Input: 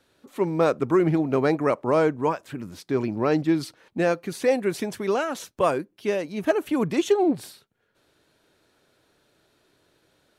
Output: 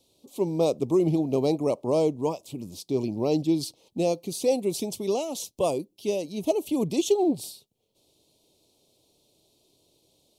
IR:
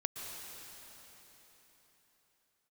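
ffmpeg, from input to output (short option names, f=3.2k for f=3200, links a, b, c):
-af "asuperstop=centerf=1600:order=4:qfactor=0.66,highshelf=f=2.5k:g=7.5,volume=-2dB"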